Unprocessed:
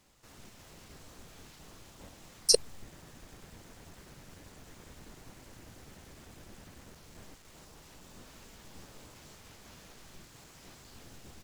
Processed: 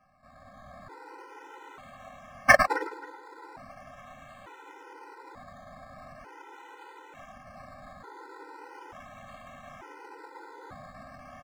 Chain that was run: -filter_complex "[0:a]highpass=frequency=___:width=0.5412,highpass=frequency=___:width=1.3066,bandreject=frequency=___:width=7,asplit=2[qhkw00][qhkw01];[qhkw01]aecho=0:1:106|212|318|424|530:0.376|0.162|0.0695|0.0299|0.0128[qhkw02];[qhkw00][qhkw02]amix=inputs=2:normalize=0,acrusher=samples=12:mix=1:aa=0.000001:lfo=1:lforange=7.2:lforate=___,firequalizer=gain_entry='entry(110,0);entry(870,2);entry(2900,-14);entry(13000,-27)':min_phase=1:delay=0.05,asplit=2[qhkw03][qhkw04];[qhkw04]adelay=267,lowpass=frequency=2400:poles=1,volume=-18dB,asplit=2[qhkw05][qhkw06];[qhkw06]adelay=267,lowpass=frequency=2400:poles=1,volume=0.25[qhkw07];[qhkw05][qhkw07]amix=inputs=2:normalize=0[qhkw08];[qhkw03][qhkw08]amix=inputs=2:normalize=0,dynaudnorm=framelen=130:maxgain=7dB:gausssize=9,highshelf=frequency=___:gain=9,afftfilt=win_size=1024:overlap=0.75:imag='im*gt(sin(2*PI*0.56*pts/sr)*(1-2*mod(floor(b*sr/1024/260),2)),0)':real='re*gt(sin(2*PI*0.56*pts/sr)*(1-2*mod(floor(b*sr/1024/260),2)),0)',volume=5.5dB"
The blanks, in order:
690, 690, 1700, 0.4, 2300